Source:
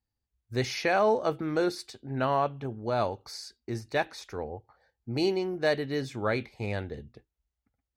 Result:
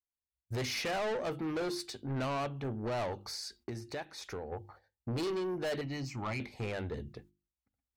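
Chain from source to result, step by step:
camcorder AGC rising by 14 dB per second
noise gate −56 dBFS, range −22 dB
mains-hum notches 50/100/150/200/250/300/350 Hz
0:03.26–0:04.52: downward compressor 3 to 1, threshold −38 dBFS, peak gain reduction 12 dB
0:05.81–0:06.40: phaser with its sweep stopped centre 2,400 Hz, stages 8
soft clipping −31.5 dBFS, distortion −6 dB

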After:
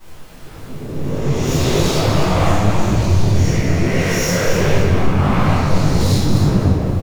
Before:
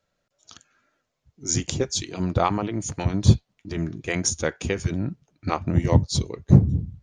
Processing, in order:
peak hold with a rise ahead of every peak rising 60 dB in 2.43 s
low-pass that shuts in the quiet parts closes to 680 Hz, open at −11 dBFS
in parallel at −2 dB: compressor whose output falls as the input rises −20 dBFS
on the sum: leveller curve on the samples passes 2
background noise pink −38 dBFS
hard clipping −13.5 dBFS, distortion −7 dB
on a send: repeating echo 255 ms, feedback 34%, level −6 dB
on the sum: rectangular room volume 650 cubic metres, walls mixed, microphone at 9.1 metres
micro pitch shift up and down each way 58 cents
level −16 dB

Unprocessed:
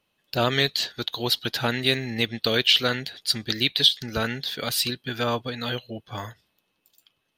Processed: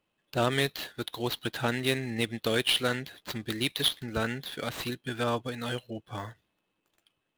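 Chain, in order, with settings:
running median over 9 samples
parametric band 320 Hz +3.5 dB 0.26 octaves
level −3.5 dB

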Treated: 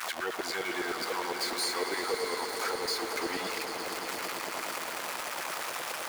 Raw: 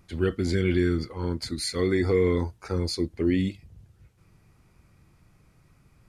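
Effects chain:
converter with a step at zero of −27 dBFS
auto-filter high-pass saw down 9.8 Hz 510–1,600 Hz
downward compressor 3 to 1, threshold −32 dBFS, peak gain reduction 11.5 dB
echo that builds up and dies away 113 ms, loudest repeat 5, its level −12 dB

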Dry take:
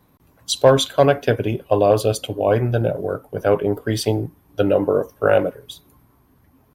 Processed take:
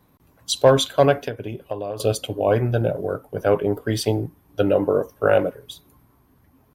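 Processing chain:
0:01.23–0:02.00: downward compressor 8 to 1, threshold −24 dBFS, peak gain reduction 14.5 dB
level −1.5 dB

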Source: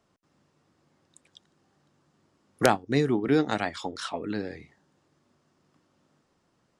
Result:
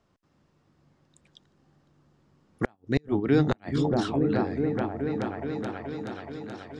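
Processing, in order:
high-frequency loss of the air 54 metres
on a send: echo whose low-pass opens from repeat to repeat 427 ms, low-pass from 200 Hz, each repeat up 1 octave, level 0 dB
on the sum: gate with flip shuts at −12 dBFS, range −37 dB
low-shelf EQ 91 Hz +10 dB

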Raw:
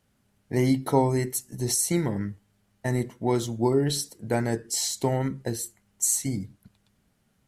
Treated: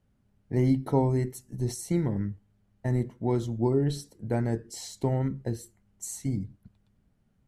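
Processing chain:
spectral tilt −2.5 dB per octave
level −6.5 dB

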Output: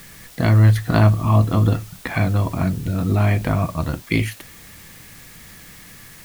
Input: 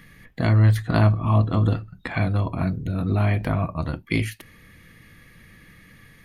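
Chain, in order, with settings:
bit-depth reduction 8 bits, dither triangular
level +3.5 dB

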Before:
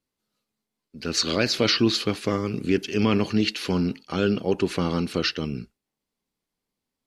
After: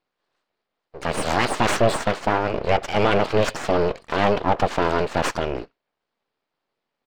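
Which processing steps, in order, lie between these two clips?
downsampling to 11,025 Hz
full-wave rectification
mid-hump overdrive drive 18 dB, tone 1,100 Hz, clips at −7 dBFS
level +3 dB

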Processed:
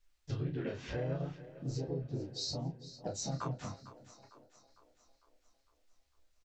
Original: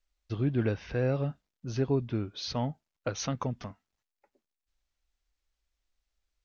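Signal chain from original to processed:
multi-voice chorus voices 2, 0.73 Hz, delay 12 ms, depth 4.7 ms
dynamic equaliser 240 Hz, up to −4 dB, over −44 dBFS, Q 1.7
downward compressor 5 to 1, threshold −44 dBFS, peak gain reduction 17 dB
gain on a spectral selection 0:01.46–0:03.33, 800–3,700 Hz −17 dB
pitch-shifted copies added +3 semitones −4 dB, +4 semitones −12 dB
double-tracking delay 30 ms −6 dB
echo with a time of its own for lows and highs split 310 Hz, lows 184 ms, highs 453 ms, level −15 dB
level +5.5 dB

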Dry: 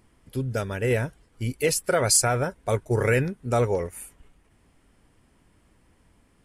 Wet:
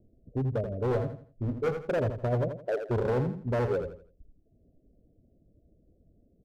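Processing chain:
Butterworth low-pass 680 Hz 96 dB per octave
reverb reduction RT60 0.76 s
0:02.48–0:02.89: Butterworth high-pass 300 Hz
hard clipping −24.5 dBFS, distortion −9 dB
0:00.92–0:01.74: double-tracking delay 21 ms −7 dB
repeating echo 83 ms, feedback 30%, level −8 dB

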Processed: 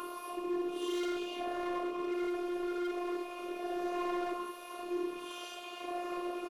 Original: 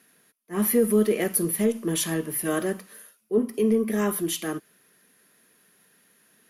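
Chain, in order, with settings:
converter with a step at zero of −28.5 dBFS
formant filter a
parametric band 440 Hz +7.5 dB 0.57 octaves
notch filter 740 Hz, Q 13
notch comb filter 790 Hz
single-tap delay 990 ms −4 dB
extreme stretch with random phases 4.5×, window 0.05 s, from 0:04.12
hard clipping −37.5 dBFS, distortion −7 dB
phases set to zero 354 Hz
level +7.5 dB

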